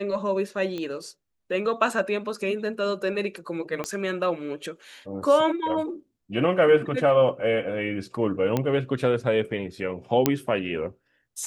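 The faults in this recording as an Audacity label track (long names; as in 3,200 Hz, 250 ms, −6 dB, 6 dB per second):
0.780000	0.780000	click −20 dBFS
3.840000	3.840000	click −15 dBFS
8.570000	8.570000	click −11 dBFS
10.260000	10.260000	click −4 dBFS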